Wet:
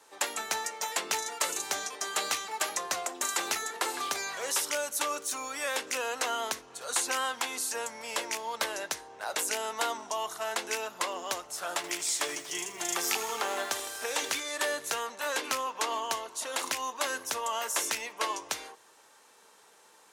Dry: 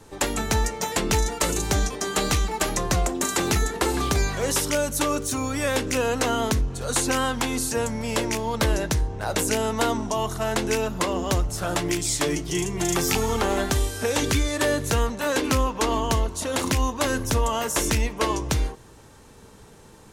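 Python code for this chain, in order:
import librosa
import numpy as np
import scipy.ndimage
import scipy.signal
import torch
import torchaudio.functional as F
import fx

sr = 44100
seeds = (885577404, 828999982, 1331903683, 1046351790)

y = scipy.signal.sosfilt(scipy.signal.butter(2, 710.0, 'highpass', fs=sr, output='sos'), x)
y = fx.echo_crushed(y, sr, ms=80, feedback_pct=80, bits=7, wet_db=-14, at=(11.68, 14.4))
y = F.gain(torch.from_numpy(y), -4.5).numpy()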